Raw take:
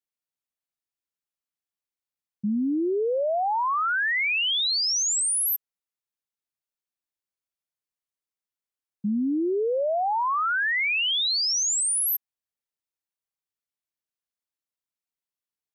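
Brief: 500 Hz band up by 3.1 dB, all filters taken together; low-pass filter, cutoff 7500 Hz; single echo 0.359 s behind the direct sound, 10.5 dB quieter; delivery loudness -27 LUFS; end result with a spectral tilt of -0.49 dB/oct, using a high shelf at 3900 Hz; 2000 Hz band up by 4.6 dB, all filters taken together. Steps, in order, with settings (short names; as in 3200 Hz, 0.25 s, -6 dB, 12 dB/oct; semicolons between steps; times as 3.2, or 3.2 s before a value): LPF 7500 Hz; bell 500 Hz +3.5 dB; bell 2000 Hz +4.5 dB; high shelf 3900 Hz +4.5 dB; echo 0.359 s -10.5 dB; gain -7 dB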